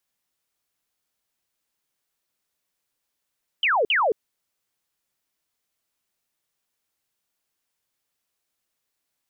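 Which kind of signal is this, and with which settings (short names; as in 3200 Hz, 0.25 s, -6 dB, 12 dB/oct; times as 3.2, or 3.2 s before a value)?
burst of laser zaps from 3200 Hz, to 390 Hz, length 0.22 s sine, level -17.5 dB, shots 2, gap 0.05 s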